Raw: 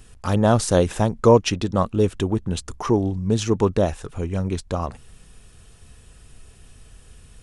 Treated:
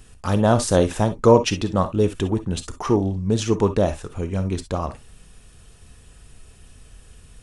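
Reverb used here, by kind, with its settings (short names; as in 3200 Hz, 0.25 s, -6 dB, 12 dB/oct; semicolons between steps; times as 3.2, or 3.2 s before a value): non-linear reverb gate 80 ms rising, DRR 10 dB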